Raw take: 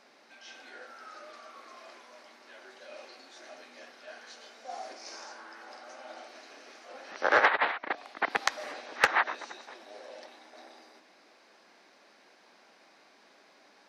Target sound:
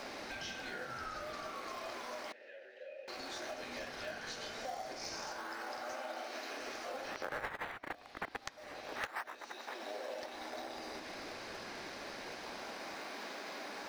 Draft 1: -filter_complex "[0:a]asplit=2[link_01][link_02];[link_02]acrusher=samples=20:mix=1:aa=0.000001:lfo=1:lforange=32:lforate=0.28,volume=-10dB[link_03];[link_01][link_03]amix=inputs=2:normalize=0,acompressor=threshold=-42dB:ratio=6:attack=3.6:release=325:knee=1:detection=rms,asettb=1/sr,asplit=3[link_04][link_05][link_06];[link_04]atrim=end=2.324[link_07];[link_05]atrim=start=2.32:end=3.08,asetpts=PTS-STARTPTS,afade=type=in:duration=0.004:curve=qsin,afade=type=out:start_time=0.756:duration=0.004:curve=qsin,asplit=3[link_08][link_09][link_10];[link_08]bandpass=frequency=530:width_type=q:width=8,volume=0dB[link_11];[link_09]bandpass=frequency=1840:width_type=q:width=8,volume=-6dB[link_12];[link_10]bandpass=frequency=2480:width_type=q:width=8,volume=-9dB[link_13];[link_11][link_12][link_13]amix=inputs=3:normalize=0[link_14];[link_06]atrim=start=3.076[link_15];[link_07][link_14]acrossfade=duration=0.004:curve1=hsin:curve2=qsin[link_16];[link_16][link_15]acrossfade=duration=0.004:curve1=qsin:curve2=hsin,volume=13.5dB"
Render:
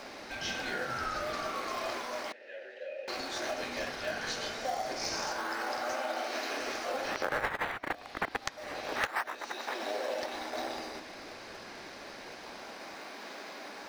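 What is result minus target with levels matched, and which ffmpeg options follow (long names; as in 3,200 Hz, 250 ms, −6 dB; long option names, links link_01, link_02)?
downward compressor: peak gain reduction −8.5 dB
-filter_complex "[0:a]asplit=2[link_01][link_02];[link_02]acrusher=samples=20:mix=1:aa=0.000001:lfo=1:lforange=32:lforate=0.28,volume=-10dB[link_03];[link_01][link_03]amix=inputs=2:normalize=0,acompressor=threshold=-52dB:ratio=6:attack=3.6:release=325:knee=1:detection=rms,asettb=1/sr,asplit=3[link_04][link_05][link_06];[link_04]atrim=end=2.324[link_07];[link_05]atrim=start=2.32:end=3.08,asetpts=PTS-STARTPTS,afade=type=in:duration=0.004:curve=qsin,afade=type=out:start_time=0.756:duration=0.004:curve=qsin,asplit=3[link_08][link_09][link_10];[link_08]bandpass=frequency=530:width_type=q:width=8,volume=0dB[link_11];[link_09]bandpass=frequency=1840:width_type=q:width=8,volume=-6dB[link_12];[link_10]bandpass=frequency=2480:width_type=q:width=8,volume=-9dB[link_13];[link_11][link_12][link_13]amix=inputs=3:normalize=0[link_14];[link_06]atrim=start=3.076[link_15];[link_07][link_14]acrossfade=duration=0.004:curve1=hsin:curve2=qsin[link_16];[link_16][link_15]acrossfade=duration=0.004:curve1=qsin:curve2=hsin,volume=13.5dB"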